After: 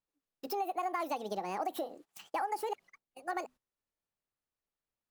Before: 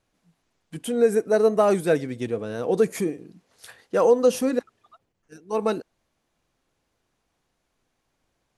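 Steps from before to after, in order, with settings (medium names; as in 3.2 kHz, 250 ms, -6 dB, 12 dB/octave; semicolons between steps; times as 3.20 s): hum notches 50/100/150 Hz; gate -54 dBFS, range -17 dB; compression 6:1, threshold -27 dBFS, peak gain reduction 14 dB; wide varispeed 1.68×; trim -5 dB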